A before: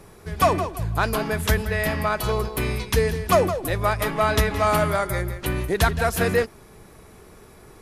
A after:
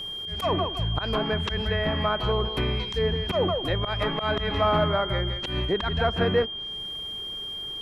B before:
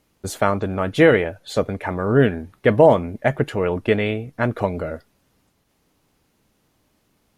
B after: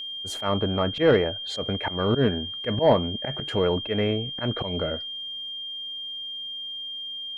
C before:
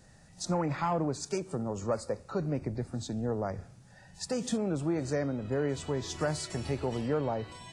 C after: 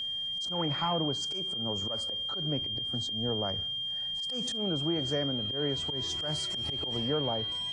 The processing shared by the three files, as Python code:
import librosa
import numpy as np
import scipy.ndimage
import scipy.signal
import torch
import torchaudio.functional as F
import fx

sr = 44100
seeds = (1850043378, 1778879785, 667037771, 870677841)

y = fx.auto_swell(x, sr, attack_ms=122.0)
y = fx.env_lowpass_down(y, sr, base_hz=1600.0, full_db=-19.5)
y = y + 10.0 ** (-31.0 / 20.0) * np.sin(2.0 * np.pi * 3200.0 * np.arange(len(y)) / sr)
y = 10.0 ** (-7.0 / 20.0) * np.tanh(y / 10.0 ** (-7.0 / 20.0))
y = F.gain(torch.from_numpy(y), -1.0).numpy()